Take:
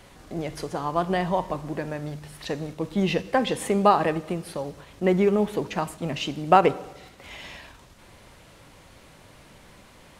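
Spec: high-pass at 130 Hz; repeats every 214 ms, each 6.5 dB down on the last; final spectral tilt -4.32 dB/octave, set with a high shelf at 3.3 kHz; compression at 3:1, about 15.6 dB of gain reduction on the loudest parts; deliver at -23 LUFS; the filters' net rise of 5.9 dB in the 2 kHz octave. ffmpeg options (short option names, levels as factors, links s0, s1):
-af "highpass=130,equalizer=f=2000:t=o:g=6,highshelf=f=3300:g=4,acompressor=threshold=0.0282:ratio=3,aecho=1:1:214|428|642|856|1070|1284:0.473|0.222|0.105|0.0491|0.0231|0.0109,volume=3.16"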